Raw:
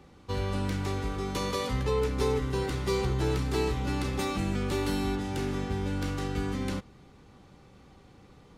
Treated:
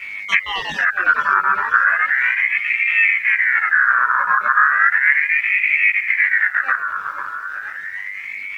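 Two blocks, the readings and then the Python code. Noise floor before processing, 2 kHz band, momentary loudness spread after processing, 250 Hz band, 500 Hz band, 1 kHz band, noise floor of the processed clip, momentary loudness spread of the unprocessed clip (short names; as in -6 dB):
-55 dBFS, +29.0 dB, 13 LU, under -15 dB, under -10 dB, +17.5 dB, -31 dBFS, 4 LU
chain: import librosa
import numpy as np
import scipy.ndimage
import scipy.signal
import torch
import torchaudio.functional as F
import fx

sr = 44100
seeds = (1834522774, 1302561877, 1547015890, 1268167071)

p1 = fx.spec_dropout(x, sr, seeds[0], share_pct=37)
p2 = fx.env_lowpass_down(p1, sr, base_hz=340.0, full_db=-30.5)
p3 = fx.leveller(p2, sr, passes=2)
p4 = fx.add_hum(p3, sr, base_hz=50, snr_db=18)
p5 = fx.rider(p4, sr, range_db=10, speed_s=0.5)
p6 = p4 + F.gain(torch.from_numpy(p5), 0.0).numpy()
p7 = fx.low_shelf(p6, sr, hz=420.0, db=5.5)
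p8 = fx.small_body(p7, sr, hz=(350.0, 930.0, 2000.0), ring_ms=45, db=8)
p9 = fx.chorus_voices(p8, sr, voices=6, hz=0.48, base_ms=21, depth_ms=4.7, mix_pct=55)
p10 = fx.quant_dither(p9, sr, seeds[1], bits=10, dither='triangular')
p11 = fx.high_shelf(p10, sr, hz=6500.0, db=-6.5)
p12 = p11 + fx.echo_feedback(p11, sr, ms=498, feedback_pct=54, wet_db=-10, dry=0)
p13 = fx.ring_lfo(p12, sr, carrier_hz=1800.0, swing_pct=25, hz=0.35)
y = F.gain(torch.from_numpy(p13), 4.5).numpy()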